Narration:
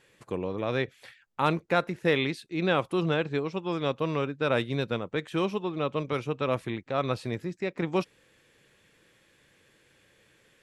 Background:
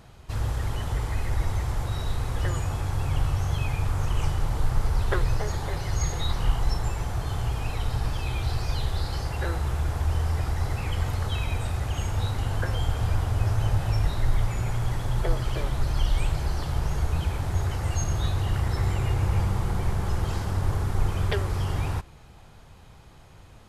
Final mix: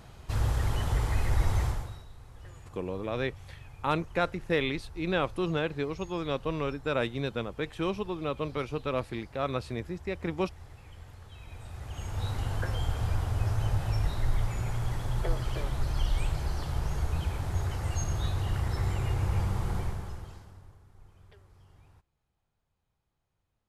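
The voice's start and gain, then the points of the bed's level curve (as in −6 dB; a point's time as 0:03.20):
2.45 s, −3.0 dB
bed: 0:01.66 0 dB
0:02.08 −21.5 dB
0:11.30 −21.5 dB
0:12.31 −4.5 dB
0:19.78 −4.5 dB
0:20.81 −31 dB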